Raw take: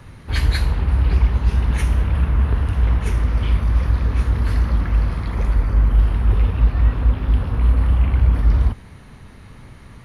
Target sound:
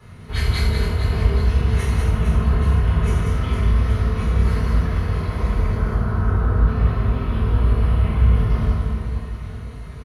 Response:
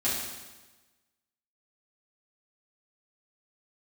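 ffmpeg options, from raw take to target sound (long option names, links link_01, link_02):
-filter_complex "[0:a]asettb=1/sr,asplit=3[link_01][link_02][link_03];[link_01]atrim=end=5.764[link_04];[link_02]atrim=start=5.76:end=6.67,asetpts=PTS-STARTPTS,afade=type=in:duration=0.004:curve=qsin,afade=type=out:start_time=0.906:duration=0.004:curve=qsin,highshelf=frequency=1900:width_type=q:width=3:gain=-8.5[link_05];[link_03]atrim=start=6.666[link_06];[link_04][link_05]acrossfade=duration=0.004:curve1=hsin:curve2=qsin[link_07];[link_07][link_06]acrossfade=duration=0.004:curve1=qsin:curve2=hsin,aecho=1:1:190|456|828.4|1350|2080:0.631|0.398|0.251|0.158|0.1[link_08];[1:a]atrim=start_sample=2205,asetrate=79380,aresample=44100[link_09];[link_08][link_09]afir=irnorm=-1:irlink=0,volume=-4.5dB"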